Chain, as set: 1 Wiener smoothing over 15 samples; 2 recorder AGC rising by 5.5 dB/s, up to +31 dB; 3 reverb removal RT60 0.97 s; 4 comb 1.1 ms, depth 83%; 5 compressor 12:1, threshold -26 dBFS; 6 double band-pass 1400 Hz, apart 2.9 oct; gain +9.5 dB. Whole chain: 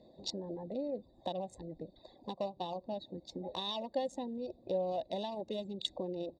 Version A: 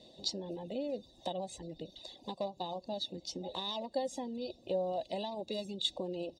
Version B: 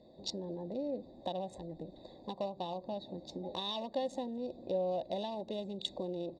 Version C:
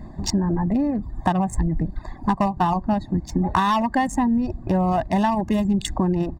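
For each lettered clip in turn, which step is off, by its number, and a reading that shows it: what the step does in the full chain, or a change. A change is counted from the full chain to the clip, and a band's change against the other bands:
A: 1, 8 kHz band +6.0 dB; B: 3, crest factor change -2.0 dB; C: 6, 4 kHz band -15.0 dB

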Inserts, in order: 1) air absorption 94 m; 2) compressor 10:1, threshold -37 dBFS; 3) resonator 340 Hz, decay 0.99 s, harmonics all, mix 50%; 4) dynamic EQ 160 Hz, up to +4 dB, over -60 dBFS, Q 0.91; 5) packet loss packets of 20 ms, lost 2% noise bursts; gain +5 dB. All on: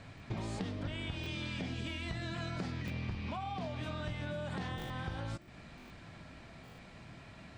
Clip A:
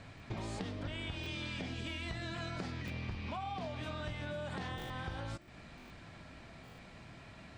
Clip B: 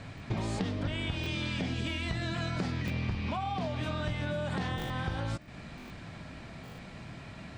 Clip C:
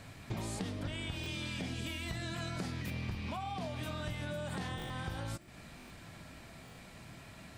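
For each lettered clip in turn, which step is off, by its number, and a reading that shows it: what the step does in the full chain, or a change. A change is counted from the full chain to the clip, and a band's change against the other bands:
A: 4, 125 Hz band -2.5 dB; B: 3, loudness change +6.0 LU; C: 1, 8 kHz band +8.0 dB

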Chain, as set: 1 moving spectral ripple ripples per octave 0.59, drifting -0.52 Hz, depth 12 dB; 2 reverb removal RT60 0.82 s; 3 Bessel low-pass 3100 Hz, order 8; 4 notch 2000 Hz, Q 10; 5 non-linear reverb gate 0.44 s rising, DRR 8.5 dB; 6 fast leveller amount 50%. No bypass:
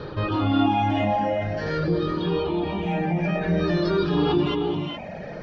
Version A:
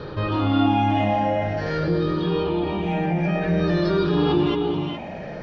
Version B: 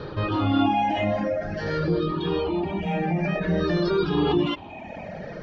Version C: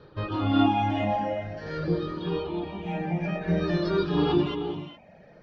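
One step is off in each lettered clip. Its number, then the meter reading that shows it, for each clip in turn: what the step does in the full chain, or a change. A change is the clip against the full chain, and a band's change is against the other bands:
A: 2, loudness change +1.5 LU; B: 5, momentary loudness spread change +6 LU; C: 6, crest factor change +2.5 dB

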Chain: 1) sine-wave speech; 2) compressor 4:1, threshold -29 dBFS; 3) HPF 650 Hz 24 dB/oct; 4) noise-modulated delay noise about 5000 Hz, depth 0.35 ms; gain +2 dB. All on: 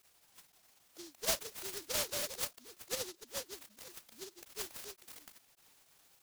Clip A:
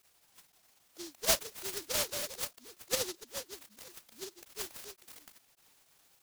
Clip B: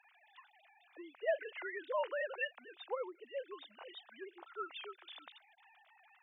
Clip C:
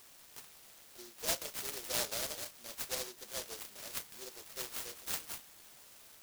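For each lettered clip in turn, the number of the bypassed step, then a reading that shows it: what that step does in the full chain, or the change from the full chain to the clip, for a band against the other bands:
2, mean gain reduction 1.5 dB; 4, 4 kHz band -14.5 dB; 1, 500 Hz band -2.0 dB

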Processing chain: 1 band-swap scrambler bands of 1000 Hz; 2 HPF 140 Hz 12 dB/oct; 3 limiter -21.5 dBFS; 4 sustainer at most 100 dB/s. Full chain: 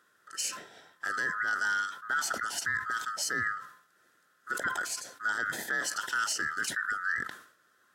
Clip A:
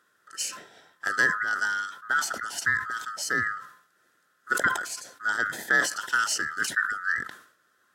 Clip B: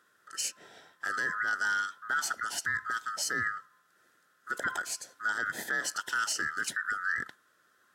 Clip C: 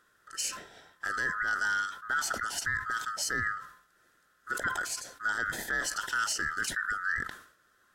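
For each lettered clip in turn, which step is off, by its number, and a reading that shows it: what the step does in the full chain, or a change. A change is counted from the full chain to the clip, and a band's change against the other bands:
3, mean gain reduction 1.5 dB; 4, crest factor change -3.0 dB; 2, 125 Hz band +4.5 dB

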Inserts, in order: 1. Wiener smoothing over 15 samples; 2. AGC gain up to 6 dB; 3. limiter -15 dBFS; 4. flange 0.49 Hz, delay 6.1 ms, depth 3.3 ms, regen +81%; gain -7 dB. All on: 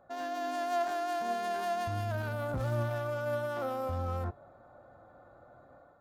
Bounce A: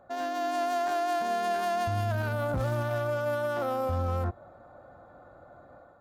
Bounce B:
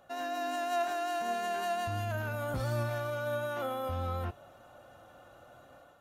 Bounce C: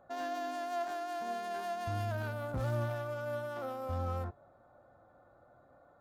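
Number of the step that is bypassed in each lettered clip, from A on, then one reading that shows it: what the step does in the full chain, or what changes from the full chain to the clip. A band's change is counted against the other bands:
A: 4, loudness change +4.5 LU; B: 1, 8 kHz band +4.0 dB; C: 2, crest factor change +2.0 dB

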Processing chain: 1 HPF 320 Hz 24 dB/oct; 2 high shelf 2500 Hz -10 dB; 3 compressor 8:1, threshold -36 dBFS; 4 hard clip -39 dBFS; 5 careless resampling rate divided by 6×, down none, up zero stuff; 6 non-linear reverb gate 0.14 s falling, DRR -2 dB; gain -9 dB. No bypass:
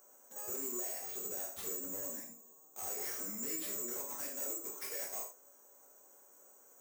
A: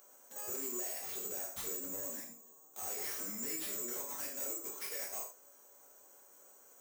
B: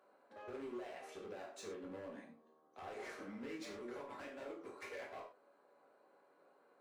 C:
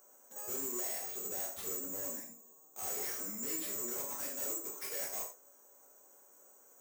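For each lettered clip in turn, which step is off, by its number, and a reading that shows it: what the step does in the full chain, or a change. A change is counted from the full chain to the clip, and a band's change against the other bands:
2, 4 kHz band +2.5 dB; 5, 8 kHz band -24.0 dB; 3, mean gain reduction 2.0 dB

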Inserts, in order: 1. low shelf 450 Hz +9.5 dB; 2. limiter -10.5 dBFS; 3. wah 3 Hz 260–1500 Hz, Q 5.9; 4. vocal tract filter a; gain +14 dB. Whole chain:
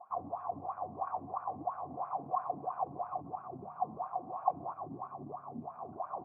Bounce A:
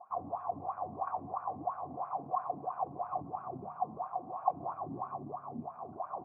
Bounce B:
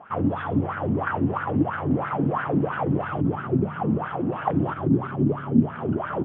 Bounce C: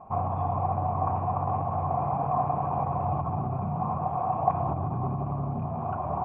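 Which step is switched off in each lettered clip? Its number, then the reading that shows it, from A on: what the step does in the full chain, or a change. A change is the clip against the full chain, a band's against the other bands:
2, momentary loudness spread change -2 LU; 4, 1 kHz band -20.0 dB; 3, 125 Hz band +15.0 dB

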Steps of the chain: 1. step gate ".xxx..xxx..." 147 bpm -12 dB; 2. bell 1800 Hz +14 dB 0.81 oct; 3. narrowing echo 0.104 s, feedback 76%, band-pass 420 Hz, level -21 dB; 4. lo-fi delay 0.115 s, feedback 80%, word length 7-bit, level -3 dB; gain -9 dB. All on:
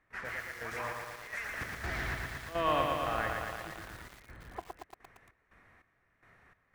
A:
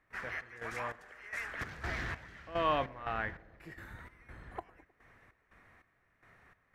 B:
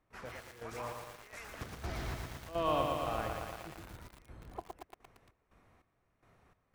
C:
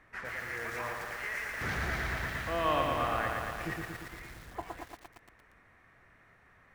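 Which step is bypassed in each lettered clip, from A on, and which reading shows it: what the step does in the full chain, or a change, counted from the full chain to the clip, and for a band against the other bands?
4, loudness change -2.0 LU; 2, 2 kHz band -9.0 dB; 1, 125 Hz band +2.0 dB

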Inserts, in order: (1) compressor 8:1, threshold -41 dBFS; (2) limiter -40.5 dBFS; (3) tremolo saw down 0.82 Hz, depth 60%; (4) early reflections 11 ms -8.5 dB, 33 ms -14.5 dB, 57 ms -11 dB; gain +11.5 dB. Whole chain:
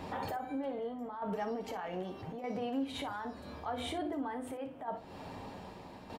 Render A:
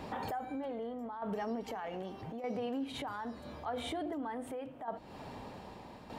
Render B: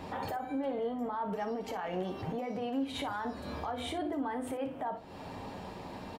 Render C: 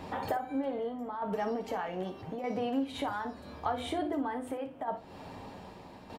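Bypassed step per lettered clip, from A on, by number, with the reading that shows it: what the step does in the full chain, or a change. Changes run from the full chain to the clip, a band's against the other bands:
4, echo-to-direct -6.0 dB to none; 3, loudness change +2.5 LU; 2, mean gain reduction 2.0 dB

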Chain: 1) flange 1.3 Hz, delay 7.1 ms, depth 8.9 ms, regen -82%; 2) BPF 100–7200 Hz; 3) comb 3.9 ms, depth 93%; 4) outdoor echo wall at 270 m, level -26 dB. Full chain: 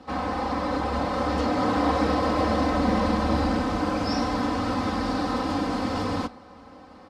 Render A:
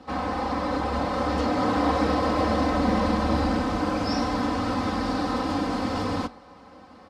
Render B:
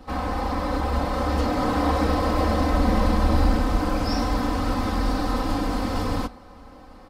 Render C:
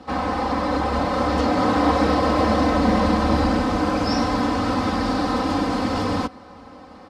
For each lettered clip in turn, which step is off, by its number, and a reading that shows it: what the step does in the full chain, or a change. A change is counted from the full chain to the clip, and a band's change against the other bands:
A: 4, echo-to-direct -31.0 dB to none; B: 2, 125 Hz band +5.5 dB; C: 1, loudness change +4.5 LU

